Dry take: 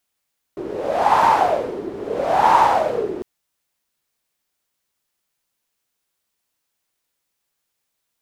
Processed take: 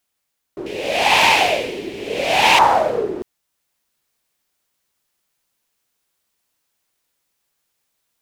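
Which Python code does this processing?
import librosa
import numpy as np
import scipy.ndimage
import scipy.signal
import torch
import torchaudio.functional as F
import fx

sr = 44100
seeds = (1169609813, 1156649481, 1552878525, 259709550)

y = fx.rider(x, sr, range_db=10, speed_s=2.0)
y = fx.high_shelf_res(y, sr, hz=1800.0, db=11.5, q=3.0, at=(0.66, 2.59))
y = y * librosa.db_to_amplitude(-1.0)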